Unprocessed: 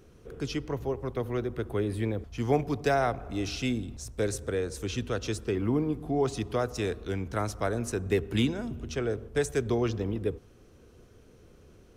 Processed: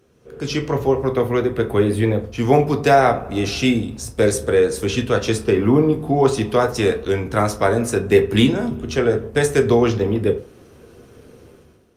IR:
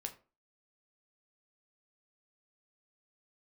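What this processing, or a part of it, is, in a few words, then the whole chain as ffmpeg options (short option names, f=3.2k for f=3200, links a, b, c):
far-field microphone of a smart speaker: -filter_complex "[1:a]atrim=start_sample=2205[a];[0:a][a]afir=irnorm=-1:irlink=0,highpass=f=140:p=1,dynaudnorm=f=100:g=9:m=14dB,volume=2dB" -ar 48000 -c:a libopus -b:a 48k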